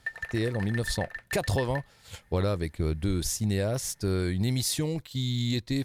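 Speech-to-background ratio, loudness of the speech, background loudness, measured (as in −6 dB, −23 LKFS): 9.0 dB, −29.5 LKFS, −38.5 LKFS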